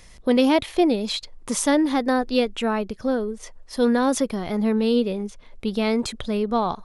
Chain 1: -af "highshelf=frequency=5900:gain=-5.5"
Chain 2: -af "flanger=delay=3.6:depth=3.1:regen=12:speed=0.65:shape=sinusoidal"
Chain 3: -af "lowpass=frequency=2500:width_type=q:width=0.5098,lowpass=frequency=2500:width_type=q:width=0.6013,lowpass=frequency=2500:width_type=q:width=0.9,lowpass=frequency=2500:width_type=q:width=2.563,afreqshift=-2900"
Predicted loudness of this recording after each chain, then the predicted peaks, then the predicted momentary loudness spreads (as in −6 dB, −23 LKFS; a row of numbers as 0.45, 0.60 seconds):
−23.0, −26.0, −19.5 LKFS; −7.5, −10.5, −8.0 dBFS; 11, 10, 11 LU